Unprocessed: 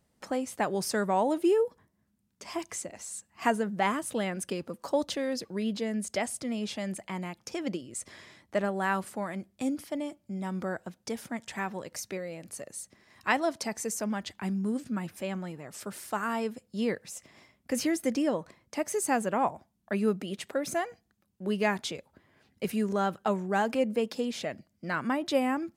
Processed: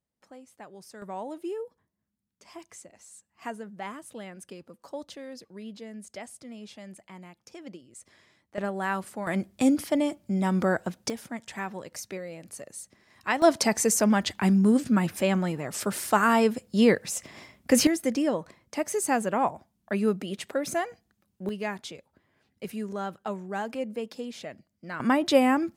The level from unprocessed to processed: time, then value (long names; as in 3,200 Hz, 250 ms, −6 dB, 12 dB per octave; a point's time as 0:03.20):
−17 dB
from 0:01.02 −10 dB
from 0:08.58 −0.5 dB
from 0:09.27 +9 dB
from 0:11.10 −0.5 dB
from 0:13.42 +10 dB
from 0:17.87 +2 dB
from 0:21.49 −5 dB
from 0:25.00 +6.5 dB